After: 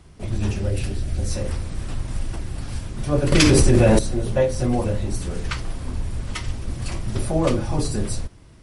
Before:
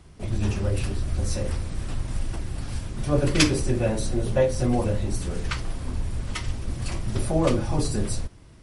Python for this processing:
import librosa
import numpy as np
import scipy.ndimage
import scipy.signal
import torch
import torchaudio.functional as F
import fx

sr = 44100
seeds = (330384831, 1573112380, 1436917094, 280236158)

y = fx.peak_eq(x, sr, hz=1100.0, db=-8.0, octaves=0.57, at=(0.51, 1.31))
y = fx.env_flatten(y, sr, amount_pct=100, at=(3.32, 3.99))
y = y * 10.0 ** (1.5 / 20.0)